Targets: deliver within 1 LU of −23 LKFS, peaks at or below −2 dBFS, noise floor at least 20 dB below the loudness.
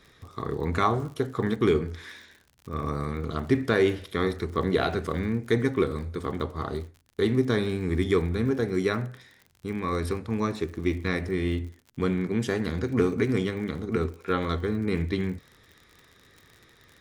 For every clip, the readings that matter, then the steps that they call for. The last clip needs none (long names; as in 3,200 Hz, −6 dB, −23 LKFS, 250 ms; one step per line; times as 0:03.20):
crackle rate 56 per second; integrated loudness −27.5 LKFS; sample peak −9.0 dBFS; target loudness −23.0 LKFS
→ click removal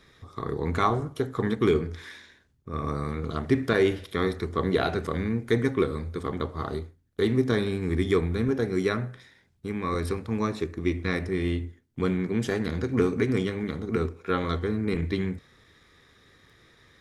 crackle rate 0.18 per second; integrated loudness −28.0 LKFS; sample peak −9.0 dBFS; target loudness −23.0 LKFS
→ level +5 dB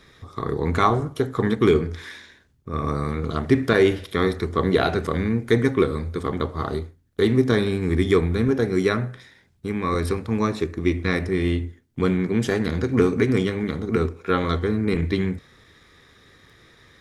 integrated loudness −23.0 LKFS; sample peak −4.0 dBFS; background noise floor −58 dBFS